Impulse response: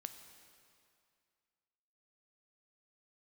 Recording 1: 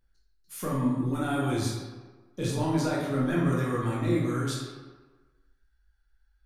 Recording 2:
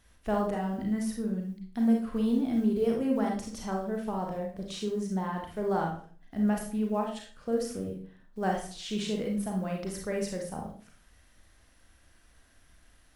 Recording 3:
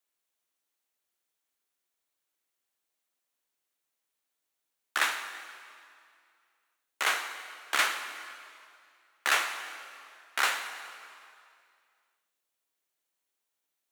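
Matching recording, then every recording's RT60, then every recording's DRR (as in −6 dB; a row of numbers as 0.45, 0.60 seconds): 3; 1.4, 0.45, 2.3 seconds; −6.0, 0.0, 7.5 decibels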